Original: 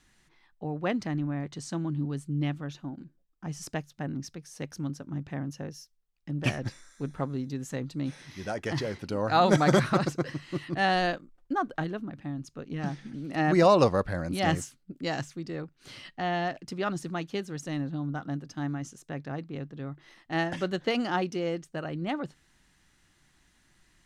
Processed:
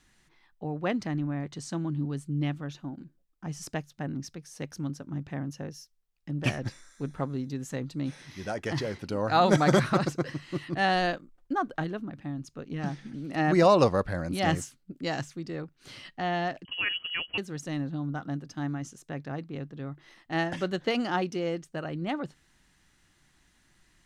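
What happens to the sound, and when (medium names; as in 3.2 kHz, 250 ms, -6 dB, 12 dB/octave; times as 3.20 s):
16.65–17.38 s: frequency inversion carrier 3.1 kHz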